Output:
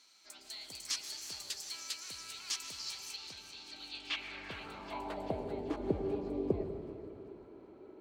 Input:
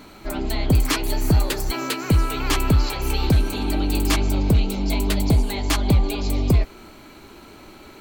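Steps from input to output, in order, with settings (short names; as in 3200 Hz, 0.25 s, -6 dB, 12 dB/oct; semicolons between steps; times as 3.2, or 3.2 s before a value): on a send at -7 dB: reverb RT60 2.7 s, pre-delay 0.103 s; on the sum: band-pass sweep 5600 Hz -> 410 Hz, 3.65–5.64; 3.16–4.51 air absorption 120 m; split-band echo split 790 Hz, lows 98 ms, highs 0.387 s, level -13.5 dB; gain -5 dB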